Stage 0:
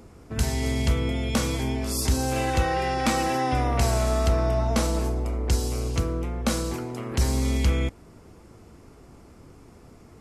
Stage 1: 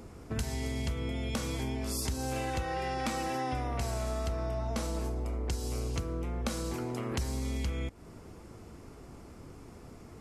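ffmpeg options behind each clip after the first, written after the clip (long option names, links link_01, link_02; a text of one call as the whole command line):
ffmpeg -i in.wav -af "acompressor=threshold=-31dB:ratio=6" out.wav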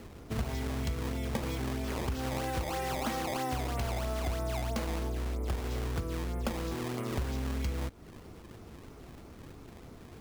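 ffmpeg -i in.wav -af "acrusher=samples=18:mix=1:aa=0.000001:lfo=1:lforange=28.8:lforate=3.1" out.wav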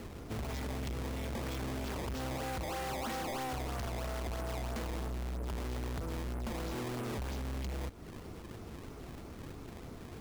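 ffmpeg -i in.wav -af "asoftclip=type=hard:threshold=-38.5dB,volume=2.5dB" out.wav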